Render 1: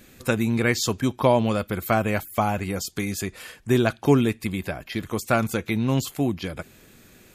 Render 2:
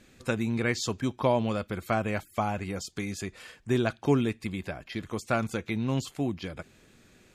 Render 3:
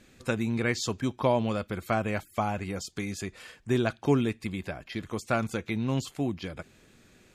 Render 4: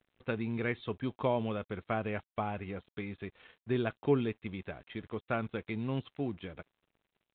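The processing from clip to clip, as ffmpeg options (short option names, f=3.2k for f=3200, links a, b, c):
-af "lowpass=8k,volume=-6dB"
-af anull
-af "equalizer=f=430:t=o:w=0.22:g=5,aresample=8000,aeval=exprs='sgn(val(0))*max(abs(val(0))-0.00224,0)':c=same,aresample=44100,volume=-6dB"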